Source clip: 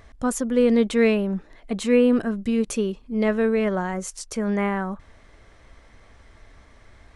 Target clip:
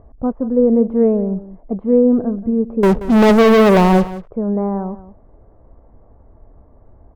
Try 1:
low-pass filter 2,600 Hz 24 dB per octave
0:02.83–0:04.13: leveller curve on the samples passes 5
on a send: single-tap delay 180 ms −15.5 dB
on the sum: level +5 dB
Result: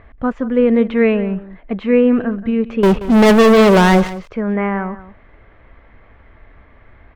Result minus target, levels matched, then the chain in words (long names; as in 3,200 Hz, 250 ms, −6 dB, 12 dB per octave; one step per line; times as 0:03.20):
2,000 Hz band +4.0 dB
low-pass filter 860 Hz 24 dB per octave
0:02.83–0:04.13: leveller curve on the samples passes 5
on a send: single-tap delay 180 ms −15.5 dB
on the sum: level +5 dB